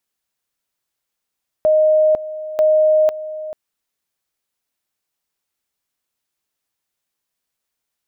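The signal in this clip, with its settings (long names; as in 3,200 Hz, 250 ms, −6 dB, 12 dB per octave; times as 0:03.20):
tone at two levels in turn 620 Hz −10 dBFS, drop 15 dB, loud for 0.50 s, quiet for 0.44 s, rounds 2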